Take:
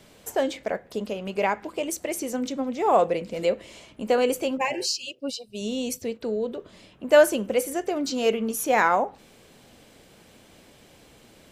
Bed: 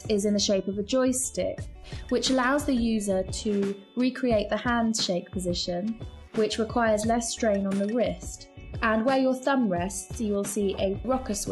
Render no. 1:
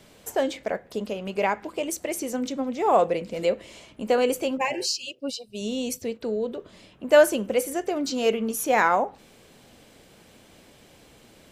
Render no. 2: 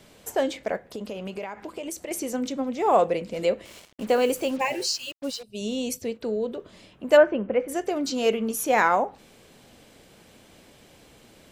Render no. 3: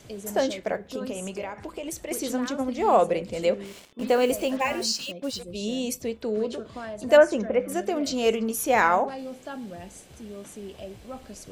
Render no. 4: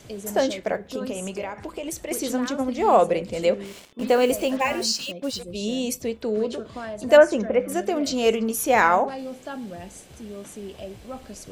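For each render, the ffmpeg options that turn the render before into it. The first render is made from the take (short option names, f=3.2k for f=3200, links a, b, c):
-af anull
-filter_complex "[0:a]asettb=1/sr,asplit=3[a][b][c];[a]atrim=end=0.814[d];[b]atrim=start=0.81:end=2.11,asetpts=PTS-STARTPTS,afade=t=in:d=0.004:c=qsin,afade=t=out:st=1.296:d=0.004:c=qsin,acompressor=threshold=-29dB:ratio=16:attack=3.2:release=140:knee=1:detection=peak[e];[c]atrim=start=2.106[f];[d][e]acrossfade=d=0.004:c1=hsin:c2=qsin[g];[g][f]acrossfade=d=0.004:c1=qsin:c2=hsin,asettb=1/sr,asplit=3[h][i][j];[h]atrim=end=3.654[k];[i]atrim=start=3.65:end=5.43,asetpts=PTS-STARTPTS,afade=t=in:d=0.004:c=qsin,afade=t=out:st=1.776:d=0.004:c=qsin,acrusher=bits=6:mix=0:aa=0.5[l];[j]atrim=start=5.426[m];[k][l]acrossfade=d=0.004:c1=hsin:c2=qsin[n];[n][m]acrossfade=d=0.004:c1=qsin:c2=hsin,asplit=3[o][p][q];[o]afade=t=out:st=7.16:d=0.02[r];[p]lowpass=f=2.3k:w=0.5412,lowpass=f=2.3k:w=1.3066,afade=t=in:st=7.16:d=0.02,afade=t=out:st=7.68:d=0.02[s];[q]afade=t=in:st=7.68:d=0.02[t];[r][s][t]amix=inputs=3:normalize=0"
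-filter_complex "[1:a]volume=-13dB[a];[0:a][a]amix=inputs=2:normalize=0"
-af "volume=2.5dB"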